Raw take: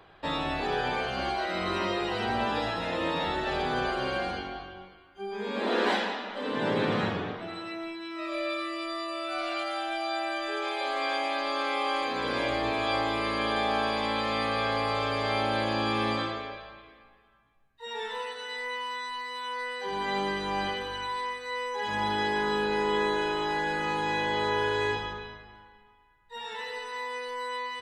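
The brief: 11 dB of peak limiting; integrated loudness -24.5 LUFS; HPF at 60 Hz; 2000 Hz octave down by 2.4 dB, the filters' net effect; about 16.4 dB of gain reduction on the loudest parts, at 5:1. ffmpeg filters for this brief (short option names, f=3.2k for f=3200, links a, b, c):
-af "highpass=60,equalizer=f=2k:t=o:g=-3,acompressor=threshold=-43dB:ratio=5,volume=25dB,alimiter=limit=-16.5dB:level=0:latency=1"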